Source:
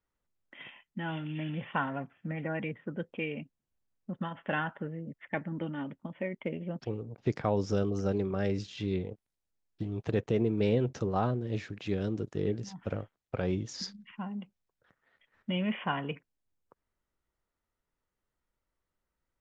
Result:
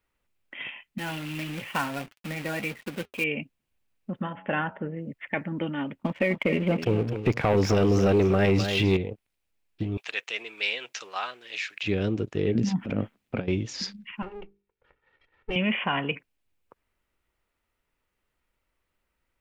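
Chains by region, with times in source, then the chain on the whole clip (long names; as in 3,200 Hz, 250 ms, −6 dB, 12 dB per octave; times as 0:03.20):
0:00.98–0:03.24: log-companded quantiser 4 bits + flanger 1.6 Hz, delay 3.1 ms, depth 4.3 ms, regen −66% + one half of a high-frequency compander encoder only
0:04.21–0:04.97: low-pass filter 1,200 Hz 6 dB per octave + hum removal 93.1 Hz, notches 11
0:06.03–0:08.97: leveller curve on the samples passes 2 + single-tap delay 256 ms −11 dB
0:09.97–0:11.83: high-pass filter 1,400 Hz + high-shelf EQ 2,800 Hz +9 dB
0:12.55–0:13.48: parametric band 220 Hz +14.5 dB 1.1 octaves + compressor whose output falls as the input rises −30 dBFS, ratio −0.5
0:14.22–0:15.56: lower of the sound and its delayed copy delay 2.2 ms + low-pass filter 1,200 Hz 6 dB per octave + mains-hum notches 50/100/150/200/250/300/350/400/450 Hz
whole clip: graphic EQ with 15 bands 160 Hz −3 dB, 2,500 Hz +8 dB, 6,300 Hz −3 dB; brickwall limiter −21 dBFS; level +6.5 dB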